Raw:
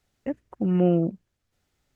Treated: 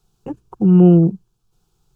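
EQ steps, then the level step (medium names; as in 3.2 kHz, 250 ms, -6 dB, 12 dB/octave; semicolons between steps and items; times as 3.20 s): bass shelf 180 Hz +9.5 dB; static phaser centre 390 Hz, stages 8; +8.0 dB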